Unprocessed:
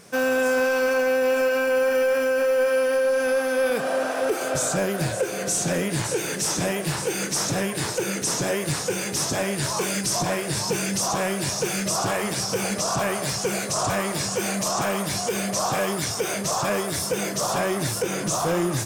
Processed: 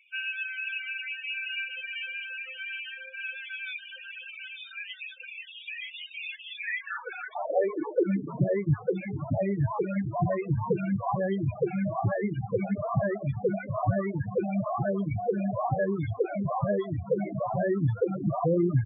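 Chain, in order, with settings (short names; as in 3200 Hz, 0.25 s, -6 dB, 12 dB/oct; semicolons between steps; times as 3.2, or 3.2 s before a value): 10.28–11.15 dynamic EQ 1100 Hz, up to +3 dB, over -39 dBFS, Q 2.3; downsampling 8000 Hz; reverb removal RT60 1.1 s; high-pass sweep 2700 Hz -> 100 Hz, 6.5–8.61; loudest bins only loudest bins 8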